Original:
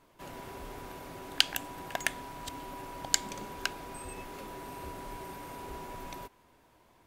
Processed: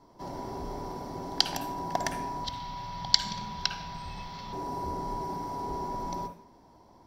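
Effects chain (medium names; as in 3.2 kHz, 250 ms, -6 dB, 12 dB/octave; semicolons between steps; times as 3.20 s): 2.44–4.53 s: FFT filter 180 Hz 0 dB, 310 Hz -18 dB, 3.6 kHz +12 dB, 9.7 kHz -14 dB, 14 kHz -6 dB; reverberation RT60 0.40 s, pre-delay 49 ms, DRR 7 dB; trim -6 dB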